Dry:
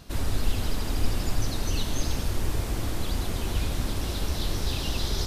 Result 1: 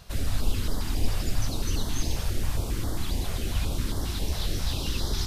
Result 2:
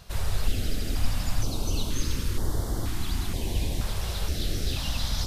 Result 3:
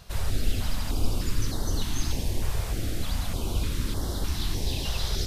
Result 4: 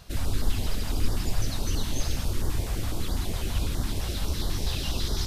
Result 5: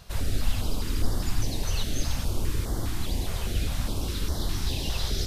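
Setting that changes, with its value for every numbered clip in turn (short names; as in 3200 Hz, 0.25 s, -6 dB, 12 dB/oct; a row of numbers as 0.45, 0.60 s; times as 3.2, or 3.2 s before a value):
stepped notch, rate: 7.4, 2.1, 3.3, 12, 4.9 Hz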